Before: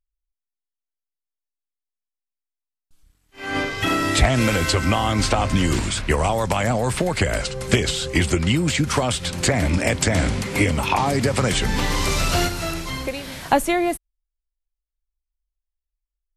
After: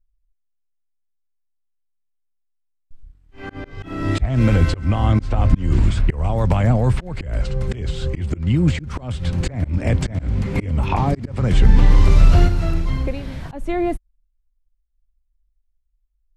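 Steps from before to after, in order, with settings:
RIAA equalisation playback
volume swells 302 ms
level −3 dB

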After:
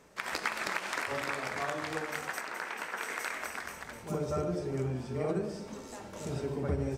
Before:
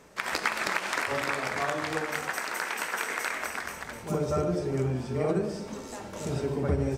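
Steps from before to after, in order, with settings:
0:02.41–0:03.02: high-shelf EQ 4,400 Hz −9 dB
level −5 dB

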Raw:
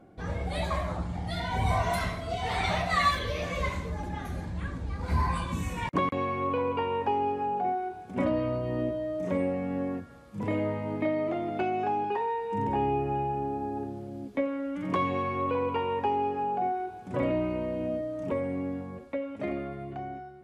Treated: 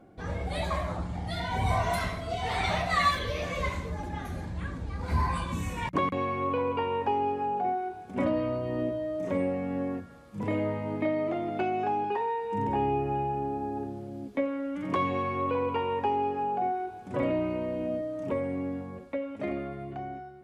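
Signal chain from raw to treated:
mains-hum notches 60/120/180 Hz

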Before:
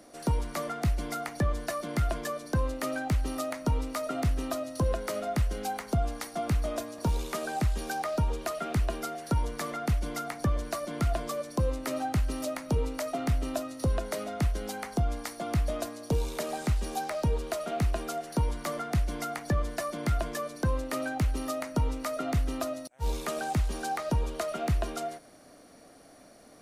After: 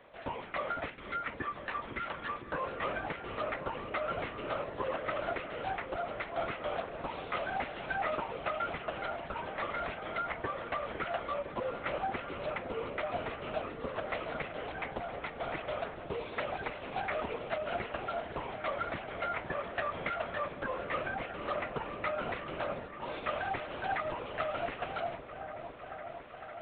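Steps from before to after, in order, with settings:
high-pass filter 200 Hz 24 dB per octave
gain on a spectral selection 0:00.89–0:02.49, 440–920 Hz −11 dB
low-pass filter 2,900 Hz 24 dB per octave
linear-prediction vocoder at 8 kHz whisper
spectral tilt +3.5 dB per octave
echo whose low-pass opens from repeat to repeat 506 ms, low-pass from 400 Hz, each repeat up 1 octave, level −6 dB

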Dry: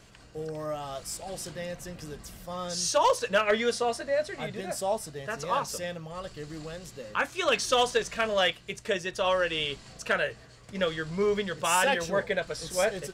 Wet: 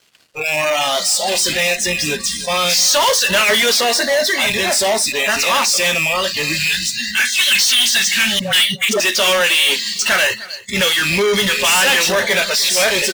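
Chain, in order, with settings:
loose part that buzzes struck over −45 dBFS, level −26 dBFS
0:06.53–0:08.79: gain on a spectral selection 240–1,500 Hz −19 dB
0:08.39–0:09.00: all-pass dispersion highs, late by 145 ms, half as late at 670 Hz
downsampling to 22,050 Hz
meter weighting curve D
in parallel at −6.5 dB: fuzz pedal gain 43 dB, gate −49 dBFS
on the sum: noise reduction from a noise print of the clip's start 27 dB
soft clipping −15 dBFS, distortion −14 dB
low-shelf EQ 80 Hz −8 dB
single-tap delay 303 ms −20 dB
level +5 dB

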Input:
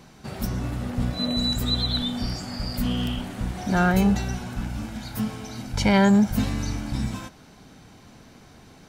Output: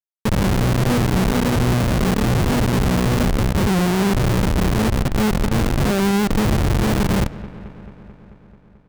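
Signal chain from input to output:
high-pass filter 48 Hz 12 dB per octave
treble cut that deepens with the level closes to 670 Hz, closed at −16 dBFS
low-pass filter 5,800 Hz 24 dB per octave
parametric band 220 Hz +4.5 dB 1 octave
comb filter 5.6 ms, depth 41%
in parallel at −1 dB: compressor whose output falls as the input rises −29 dBFS, ratio −1
on the sum: flanger 1.2 Hz, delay 7.4 ms, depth 3 ms, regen +22%
comparator with hysteresis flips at −22.5 dBFS
bucket-brigade delay 219 ms, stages 4,096, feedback 72%, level −17 dB
on a send at −19.5 dB: convolution reverb RT60 1.0 s, pre-delay 35 ms
on the sum: windowed peak hold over 33 samples
level +6 dB

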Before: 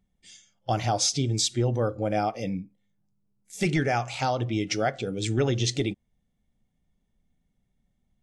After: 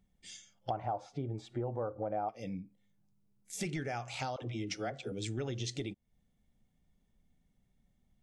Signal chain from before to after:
0:00.70–0:02.29: drawn EQ curve 240 Hz 0 dB, 920 Hz +11 dB, 5,400 Hz −25 dB
downward compressor 3 to 1, threshold −39 dBFS, peak gain reduction 18.5 dB
0:04.36–0:05.12: all-pass dispersion lows, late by 62 ms, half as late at 430 Hz

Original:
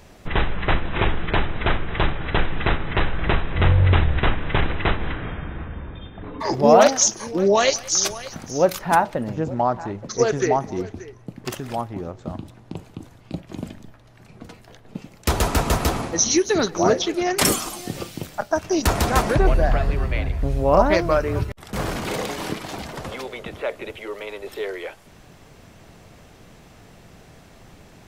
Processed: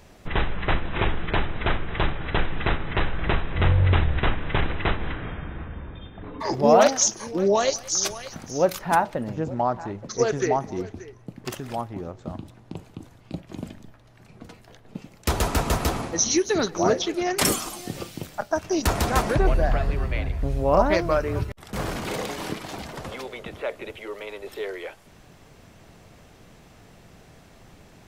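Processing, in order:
0:07.56–0:08.03: dynamic equaliser 2,400 Hz, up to −7 dB, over −34 dBFS, Q 1
level −3 dB

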